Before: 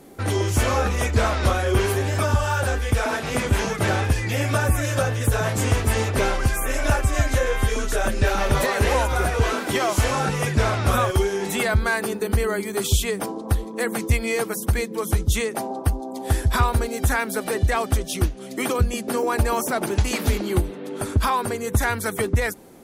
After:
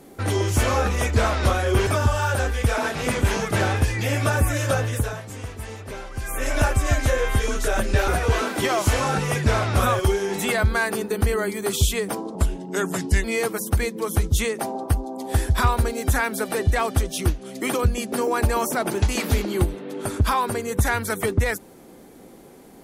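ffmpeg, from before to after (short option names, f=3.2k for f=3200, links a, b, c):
-filter_complex "[0:a]asplit=7[a][b][c][d][e][f][g];[a]atrim=end=1.872[h];[b]atrim=start=2.148:end=5.49,asetpts=PTS-STARTPTS,afade=t=out:st=2.992:d=0.35:silence=0.211349[i];[c]atrim=start=5.49:end=6.42,asetpts=PTS-STARTPTS,volume=-13.5dB[j];[d]atrim=start=6.42:end=8.362,asetpts=PTS-STARTPTS,afade=t=in:d=0.35:silence=0.211349[k];[e]atrim=start=9.188:end=13.464[l];[f]atrim=start=13.46:end=14.2,asetpts=PTS-STARTPTS,asetrate=36603,aresample=44100,atrim=end_sample=39318,asetpts=PTS-STARTPTS[m];[g]atrim=start=14.196[n];[i][j][k]concat=n=3:v=0:a=1[o];[h][o]acrossfade=d=0.004:c1=hsin:c2=hsin[p];[p][l]acrossfade=d=0.004:c1=hsin:c2=hsin[q];[q][m]acrossfade=d=0.004:c1=hsin:c2=hsin[r];[r][n]acrossfade=d=0.004:c1=hsin:c2=hsin"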